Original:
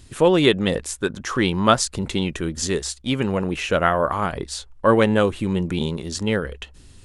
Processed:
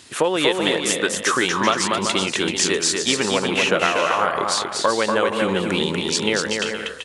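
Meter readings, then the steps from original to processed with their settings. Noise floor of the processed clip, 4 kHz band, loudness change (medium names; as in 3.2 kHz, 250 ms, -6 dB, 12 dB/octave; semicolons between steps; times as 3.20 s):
-31 dBFS, +6.5 dB, +1.5 dB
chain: frequency weighting A; compression, threshold -25 dBFS, peak gain reduction 14 dB; on a send: bouncing-ball echo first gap 240 ms, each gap 0.6×, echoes 5; on the sum: trim +8.5 dB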